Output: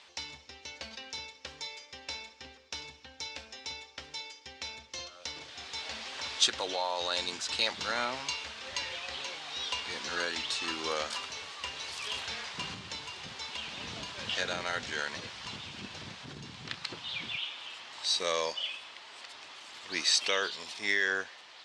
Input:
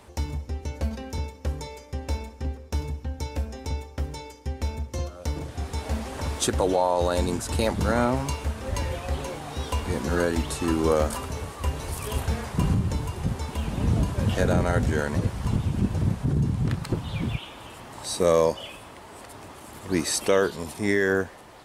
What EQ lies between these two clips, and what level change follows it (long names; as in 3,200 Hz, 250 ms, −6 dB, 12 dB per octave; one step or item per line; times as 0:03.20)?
resonant band-pass 3,800 Hz, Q 1.1
high-frequency loss of the air 150 metres
high-shelf EQ 3,700 Hz +12 dB
+4.5 dB